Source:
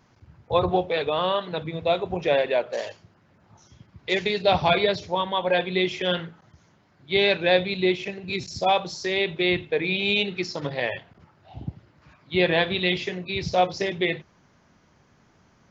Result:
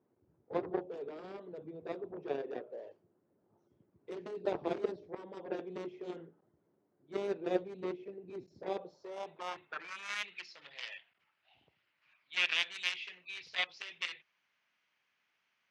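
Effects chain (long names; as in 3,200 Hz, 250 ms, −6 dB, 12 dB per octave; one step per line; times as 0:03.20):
harmonic generator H 3 −12 dB, 7 −20 dB, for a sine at −7 dBFS
band-pass filter sweep 380 Hz → 2,600 Hz, 0:08.63–0:10.46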